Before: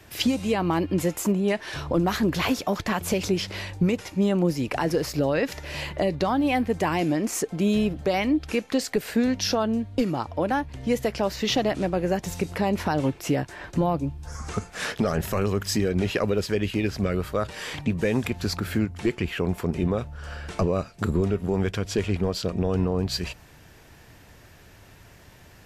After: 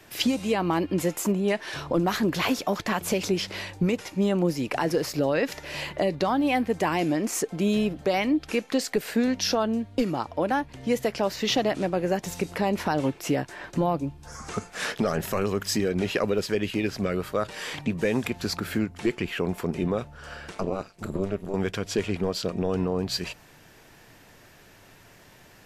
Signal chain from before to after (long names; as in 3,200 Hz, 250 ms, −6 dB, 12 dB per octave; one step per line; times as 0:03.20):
parametric band 62 Hz −13 dB 1.5 octaves
0:20.50–0:21.54: amplitude modulation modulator 200 Hz, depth 80%